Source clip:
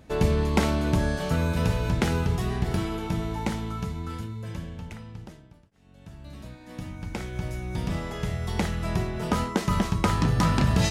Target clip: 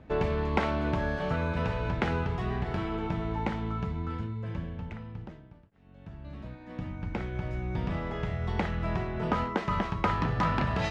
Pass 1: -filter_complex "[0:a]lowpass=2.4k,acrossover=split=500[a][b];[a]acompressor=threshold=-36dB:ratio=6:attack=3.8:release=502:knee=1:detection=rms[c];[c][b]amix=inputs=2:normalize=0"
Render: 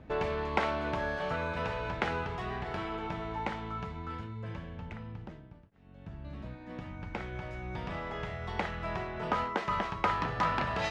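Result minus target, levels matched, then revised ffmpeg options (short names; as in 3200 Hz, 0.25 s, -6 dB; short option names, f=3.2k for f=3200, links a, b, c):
compressor: peak gain reduction +9 dB
-filter_complex "[0:a]lowpass=2.4k,acrossover=split=500[a][b];[a]acompressor=threshold=-25dB:ratio=6:attack=3.8:release=502:knee=1:detection=rms[c];[c][b]amix=inputs=2:normalize=0"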